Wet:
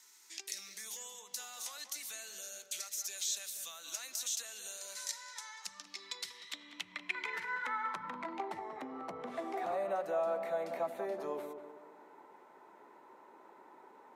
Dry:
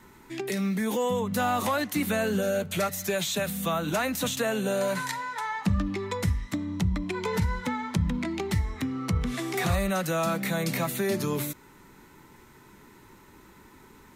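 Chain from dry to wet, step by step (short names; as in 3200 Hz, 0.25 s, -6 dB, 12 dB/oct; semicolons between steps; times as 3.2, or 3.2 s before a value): HPF 290 Hz 12 dB/oct; high shelf 9300 Hz +11.5 dB; compressor 4:1, threshold -33 dBFS, peak gain reduction 9 dB; band-pass sweep 5800 Hz -> 680 Hz, 5.82–8.69; tape echo 0.19 s, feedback 51%, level -6 dB, low-pass 1300 Hz; gain +5 dB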